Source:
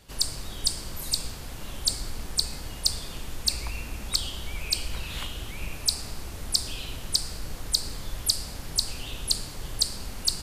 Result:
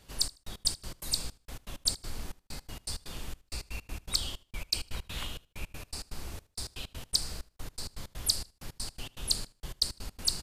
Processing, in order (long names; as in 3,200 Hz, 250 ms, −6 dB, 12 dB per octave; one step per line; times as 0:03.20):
gate pattern "xxx..x.x.x." 162 BPM −60 dB
repeating echo 77 ms, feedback 25%, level −22.5 dB
level −3.5 dB